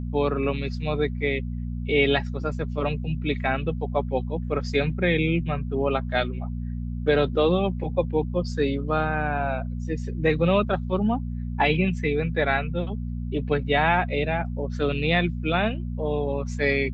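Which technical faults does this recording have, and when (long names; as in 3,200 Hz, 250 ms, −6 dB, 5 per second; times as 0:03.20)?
mains hum 60 Hz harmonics 4 −30 dBFS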